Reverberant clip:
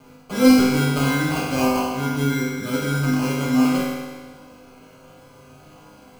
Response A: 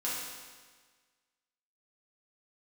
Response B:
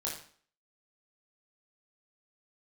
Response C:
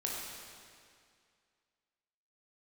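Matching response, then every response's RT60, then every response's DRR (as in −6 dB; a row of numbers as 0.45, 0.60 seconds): A; 1.5, 0.50, 2.2 seconds; −8.0, −4.5, −3.5 decibels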